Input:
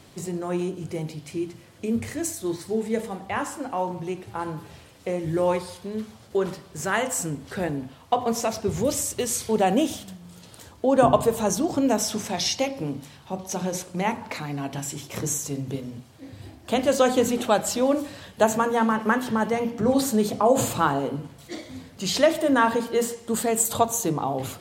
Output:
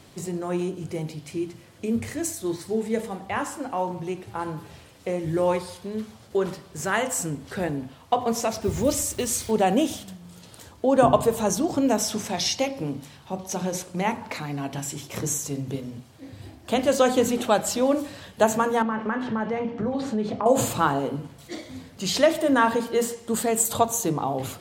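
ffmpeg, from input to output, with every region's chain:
-filter_complex "[0:a]asettb=1/sr,asplit=3[s0][s1][s2];[s0]atrim=end=8.614[s3];[s1]atrim=start=8.61:end=9.51,asetpts=PTS-STARTPTS,afade=t=in:d=0.004:c=qsin,afade=t=out:st=0.896:d=0.004:c=qsin,lowshelf=f=80:g=9,aecho=1:1:3.3:0.32,atrim=end_sample=39690,acrusher=bits=6:mix=0:aa=0.5[s4];[s2]atrim=start=9.506[s5];[s3][s4]acrossfade=d=0.004:c1=hsin:c2=qsin[s6];[s6][s5]acrossfade=d=0.004:c1=qsin:c2=hsin,asettb=1/sr,asplit=3[s7][s8][s9];[s7]atrim=end=18.824[s10];[s8]atrim=start=18.82:end=20.46,asetpts=PTS-STARTPTS,afade=t=in:d=0.004:c=qsin,afade=t=out:st=1.636:d=0.004:c=qsin,lowpass=3000,acompressor=threshold=0.0708:ratio=4:attack=3.2:release=140:knee=1:detection=peak,asplit=2[s11][s12];[s12]adelay=28,volume=0.224[s13];[s11][s13]amix=inputs=2:normalize=0,atrim=end_sample=72324[s14];[s9]atrim=start=20.456[s15];[s10][s14]acrossfade=d=0.004:c1=hsin:c2=qsin[s16];[s16][s15]acrossfade=d=0.004:c1=qsin:c2=hsin"

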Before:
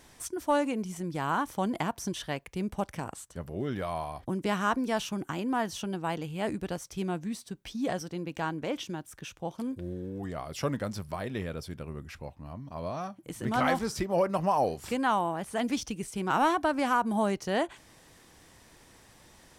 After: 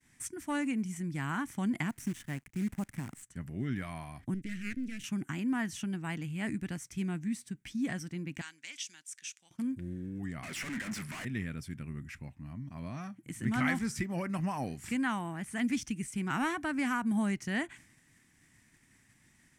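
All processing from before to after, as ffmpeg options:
-filter_complex "[0:a]asettb=1/sr,asplit=3[s0][s1][s2];[s0]atrim=end=1.894[s3];[s1]atrim=start=1.89:end=3.23,asetpts=PTS-STARTPTS,afade=t=in:d=0.004:c=qsin,afade=t=out:st=1.336:d=0.004:c=qsin,equalizer=f=3400:w=0.45:g=-9,acrusher=bits=8:dc=4:mix=0:aa=0.000001[s4];[s2]atrim=start=3.226[s5];[s3][s4]acrossfade=d=0.004:c1=hsin:c2=qsin[s6];[s6][s5]acrossfade=d=0.004:c1=qsin:c2=hsin,asettb=1/sr,asplit=3[s7][s8][s9];[s7]atrim=end=4.344[s10];[s8]atrim=start=4.34:end=5.04,asetpts=PTS-STARTPTS,afade=t=in:d=0.004:c=qsin,afade=t=out:st=0.696:d=0.004:c=qsin,highshelf=f=4400:g=-8.5,aeval=exprs='max(val(0),0)':c=same,asuperstop=centerf=910:order=4:qfactor=0.57[s11];[s9]atrim=start=5.036[s12];[s10][s11]acrossfade=d=0.004:c1=hsin:c2=qsin[s13];[s13][s12]acrossfade=d=0.004:c1=qsin:c2=hsin,asettb=1/sr,asplit=3[s14][s15][s16];[s14]atrim=end=8.414[s17];[s15]atrim=start=8.41:end=9.51,asetpts=PTS-STARTPTS,afade=t=in:d=0.004:c=qsin,afade=t=out:st=1.096:d=0.004:c=qsin,bandpass=f=5800:t=q:w=0.89,equalizer=f=5800:w=0.4:g=9.5[s18];[s16]atrim=start=9.506[s19];[s17][s18]acrossfade=d=0.004:c1=hsin:c2=qsin[s20];[s20][s19]acrossfade=d=0.004:c1=qsin:c2=hsin,asettb=1/sr,asplit=3[s21][s22][s23];[s21]atrim=end=10.434[s24];[s22]atrim=start=10.43:end=11.25,asetpts=PTS-STARTPTS,afade=t=in:d=0.004:c=qsin,afade=t=out:st=0.816:d=0.004:c=qsin,highpass=f=240:p=1,asplit=2[s25][s26];[s26]highpass=f=720:p=1,volume=28.2,asoftclip=type=tanh:threshold=0.126[s27];[s25][s27]amix=inputs=2:normalize=0,lowpass=f=2700:p=1,volume=0.501,asoftclip=type=hard:threshold=0.0188[s28];[s23]atrim=start=11.246[s29];[s24][s28]acrossfade=d=0.004:c1=hsin:c2=qsin[s30];[s30][s29]acrossfade=d=0.004:c1=qsin:c2=hsin,equalizer=f=125:t=o:w=1:g=8,equalizer=f=250:t=o:w=1:g=9,equalizer=f=500:t=o:w=1:g=-11,equalizer=f=1000:t=o:w=1:g=-4,equalizer=f=2000:t=o:w=1:g=12,equalizer=f=4000:t=o:w=1:g=-5,equalizer=f=8000:t=o:w=1:g=8,agate=range=0.0224:threshold=0.00562:ratio=3:detection=peak,volume=0.422"

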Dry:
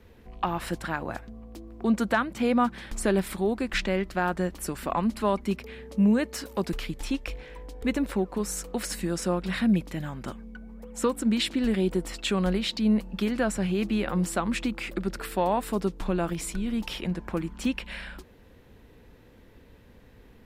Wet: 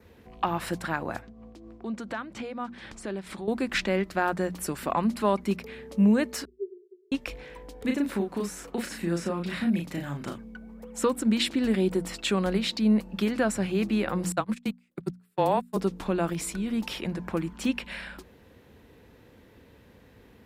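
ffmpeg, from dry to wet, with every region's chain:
-filter_complex "[0:a]asettb=1/sr,asplit=3[s0][s1][s2];[s0]atrim=end=1.224[s3];[s1]atrim=start=1.22:end=3.48,asetpts=PTS-STARTPTS,afade=t=in:d=0.004:c=qsin,afade=t=out:st=2.256:d=0.004:c=qsin,tremolo=f=4.2:d=0.55,acompressor=threshold=0.0178:ratio=2.5:attack=3.2:release=140:knee=1:detection=peak,lowpass=7300[s4];[s2]atrim=start=3.476[s5];[s3][s4]acrossfade=d=0.004:c1=hsin:c2=qsin[s6];[s6][s5]acrossfade=d=0.004:c1=qsin:c2=hsin,asettb=1/sr,asplit=3[s7][s8][s9];[s7]atrim=end=6.454[s10];[s8]atrim=start=6.45:end=7.12,asetpts=PTS-STARTPTS,afade=t=in:d=0.004:c=qsin,afade=t=out:st=0.666:d=0.004:c=qsin,aeval=exprs='0.0944*(abs(mod(val(0)/0.0944+3,4)-2)-1)':c=same,asuperpass=centerf=390:order=20:qfactor=5.7[s11];[s9]atrim=start=7.116[s12];[s10][s11]acrossfade=d=0.004:c1=hsin:c2=qsin[s13];[s13][s12]acrossfade=d=0.004:c1=qsin:c2=hsin,asettb=1/sr,asplit=3[s14][s15][s16];[s14]atrim=end=7.824[s17];[s15]atrim=start=7.82:end=10.38,asetpts=PTS-STARTPTS,afade=t=in:d=0.004:c=qsin,afade=t=out:st=2.556:d=0.004:c=qsin,bandreject=f=50:t=h:w=6,bandreject=f=100:t=h:w=6,bandreject=f=150:t=h:w=6,acrossover=split=600|1300|3200[s18][s19][s20][s21];[s18]acompressor=threshold=0.0447:ratio=3[s22];[s19]acompressor=threshold=0.00316:ratio=3[s23];[s20]acompressor=threshold=0.01:ratio=3[s24];[s21]acompressor=threshold=0.00398:ratio=3[s25];[s22][s23][s24][s25]amix=inputs=4:normalize=0,asplit=2[s26][s27];[s27]adelay=35,volume=0.668[s28];[s26][s28]amix=inputs=2:normalize=0,atrim=end_sample=112896[s29];[s16]atrim=start=10.376[s30];[s17][s29]acrossfade=d=0.004:c1=hsin:c2=qsin[s31];[s31][s30]acrossfade=d=0.004:c1=qsin:c2=hsin,asettb=1/sr,asplit=3[s32][s33][s34];[s32]atrim=end=14.324[s35];[s33]atrim=start=14.32:end=15.77,asetpts=PTS-STARTPTS,afade=t=in:d=0.004:c=qsin,afade=t=out:st=1.446:d=0.004:c=qsin,agate=range=0.01:threshold=0.0447:ratio=16:release=100:detection=peak,highshelf=f=6500:g=9.5,afreqshift=-21[s36];[s34]atrim=start=15.766[s37];[s35][s36]acrossfade=d=0.004:c1=hsin:c2=qsin[s38];[s38][s37]acrossfade=d=0.004:c1=qsin:c2=hsin,highpass=68,bandreject=f=60:t=h:w=6,bandreject=f=120:t=h:w=6,bandreject=f=180:t=h:w=6,bandreject=f=240:t=h:w=6,adynamicequalizer=threshold=0.00178:dfrequency=3100:dqfactor=5.5:tfrequency=3100:tqfactor=5.5:attack=5:release=100:ratio=0.375:range=2:mode=cutabove:tftype=bell,volume=1.12"

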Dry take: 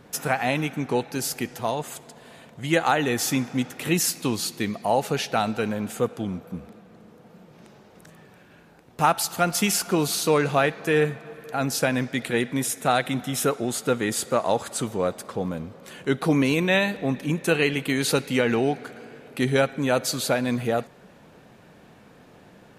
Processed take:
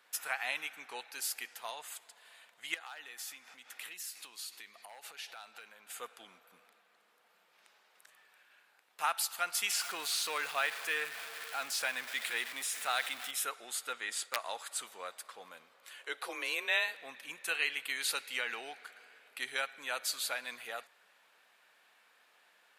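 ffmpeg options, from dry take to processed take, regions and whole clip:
-filter_complex "[0:a]asettb=1/sr,asplit=3[s0][s1][s2];[s0]atrim=end=2.744[s3];[s1]atrim=start=2.74:end=5.91,asetpts=PTS-STARTPTS,afade=t=in:d=0.004:c=qsin,afade=t=out:st=3.166:d=0.004:c=qsin,asoftclip=type=hard:threshold=0.178,acompressor=threshold=0.0251:ratio=6:attack=3.2:release=140:knee=1:detection=peak[s4];[s2]atrim=start=5.906[s5];[s3][s4]acrossfade=d=0.004:c1=hsin:c2=qsin[s6];[s6][s5]acrossfade=d=0.004:c1=qsin:c2=hsin,asettb=1/sr,asplit=3[s7][s8][s9];[s7]atrim=end=9.714[s10];[s8]atrim=start=9.71:end=13.31,asetpts=PTS-STARTPTS,afade=t=in:d=0.004:c=qsin,afade=t=out:st=3.596:d=0.004:c=qsin,aeval=exprs='val(0)+0.5*0.0398*sgn(val(0))':c=same,acrossover=split=7900[s11][s12];[s12]acompressor=threshold=0.0178:ratio=4:attack=1:release=60[s13];[s11][s13]amix=inputs=2:normalize=0,aeval=exprs='val(0)+0.02*(sin(2*PI*50*n/s)+sin(2*PI*2*50*n/s)/2+sin(2*PI*3*50*n/s)/3+sin(2*PI*4*50*n/s)/4+sin(2*PI*5*50*n/s)/5)':c=same[s14];[s9]atrim=start=13.306[s15];[s10][s14]acrossfade=d=0.004:c1=hsin:c2=qsin[s16];[s16][s15]acrossfade=d=0.004:c1=qsin:c2=hsin,asettb=1/sr,asplit=3[s17][s18][s19];[s17]atrim=end=13.934[s20];[s18]atrim=start=13.93:end=14.36,asetpts=PTS-STARTPTS,afade=t=in:d=0.004:c=qsin,afade=t=out:st=0.426:d=0.004:c=qsin,agate=range=0.0224:threshold=0.0141:ratio=3:release=100:detection=peak,lowpass=8600,aeval=exprs='(mod(3.76*val(0)+1,2)-1)/3.76':c=same[s21];[s19]atrim=start=14.356[s22];[s20][s21]acrossfade=d=0.004:c1=hsin:c2=qsin[s23];[s23][s22]acrossfade=d=0.004:c1=qsin:c2=hsin,asettb=1/sr,asplit=3[s24][s25][s26];[s24]atrim=end=15.994[s27];[s25]atrim=start=15.99:end=16.95,asetpts=PTS-STARTPTS,afade=t=in:d=0.004:c=qsin,afade=t=out:st=0.956:d=0.004:c=qsin,highpass=f=370:t=q:w=1.7,afreqshift=26[s28];[s26]atrim=start=16.946[s29];[s27][s28]acrossfade=d=0.004:c1=hsin:c2=qsin[s30];[s30][s29]acrossfade=d=0.004:c1=qsin:c2=hsin,highpass=1400,equalizer=f=6100:w=2.5:g=-4.5,volume=0.501"

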